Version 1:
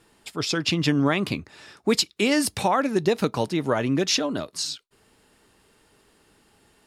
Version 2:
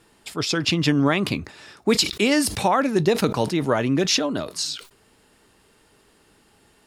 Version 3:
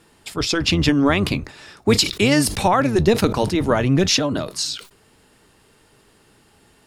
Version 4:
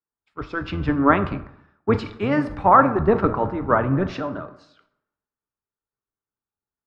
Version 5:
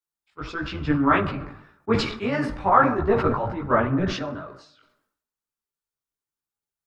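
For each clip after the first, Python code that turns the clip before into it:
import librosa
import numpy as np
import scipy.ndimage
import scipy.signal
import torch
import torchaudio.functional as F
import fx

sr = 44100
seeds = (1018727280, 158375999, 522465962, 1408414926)

y1 = fx.sustainer(x, sr, db_per_s=130.0)
y1 = y1 * librosa.db_to_amplitude(2.0)
y2 = fx.octave_divider(y1, sr, octaves=1, level_db=-4.0)
y2 = y2 * librosa.db_to_amplitude(2.5)
y3 = fx.lowpass_res(y2, sr, hz=1300.0, q=2.5)
y3 = fx.rev_plate(y3, sr, seeds[0], rt60_s=1.4, hf_ratio=0.5, predelay_ms=0, drr_db=9.0)
y3 = fx.band_widen(y3, sr, depth_pct=100)
y3 = y3 * librosa.db_to_amplitude(-5.5)
y4 = fx.high_shelf(y3, sr, hz=2500.0, db=8.5)
y4 = fx.chorus_voices(y4, sr, voices=4, hz=0.96, base_ms=17, depth_ms=4.3, mix_pct=55)
y4 = fx.sustainer(y4, sr, db_per_s=78.0)
y4 = y4 * librosa.db_to_amplitude(-1.5)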